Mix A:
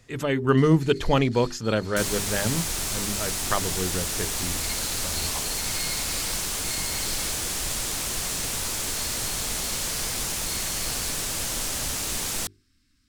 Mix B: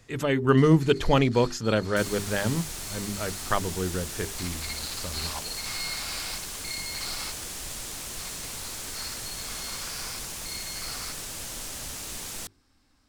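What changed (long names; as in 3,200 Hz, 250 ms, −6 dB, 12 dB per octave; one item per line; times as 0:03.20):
first sound: remove Butterworth band-reject 690 Hz, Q 0.52
second sound −8.0 dB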